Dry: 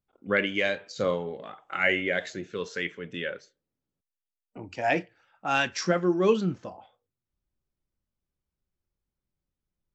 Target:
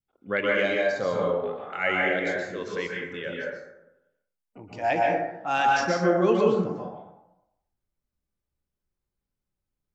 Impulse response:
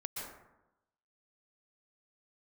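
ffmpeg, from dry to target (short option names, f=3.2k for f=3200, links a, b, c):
-filter_complex "[0:a]adynamicequalizer=threshold=0.00891:dfrequency=780:dqfactor=1.3:tfrequency=780:tqfactor=1.3:attack=5:release=100:ratio=0.375:range=3:mode=boostabove:tftype=bell[a];[1:a]atrim=start_sample=2205[b];[a][b]afir=irnorm=-1:irlink=0"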